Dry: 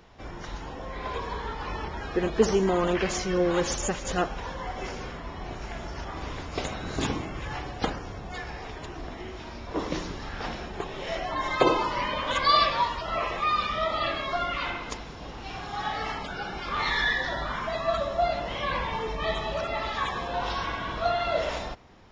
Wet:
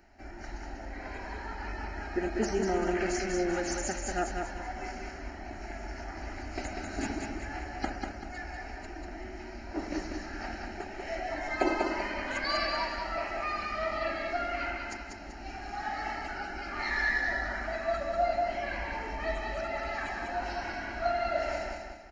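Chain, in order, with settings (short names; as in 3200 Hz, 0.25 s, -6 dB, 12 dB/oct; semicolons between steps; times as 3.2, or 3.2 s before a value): bell 4200 Hz +8.5 dB 0.39 oct; fixed phaser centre 720 Hz, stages 8; feedback echo 0.193 s, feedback 38%, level -4 dB; gain -3 dB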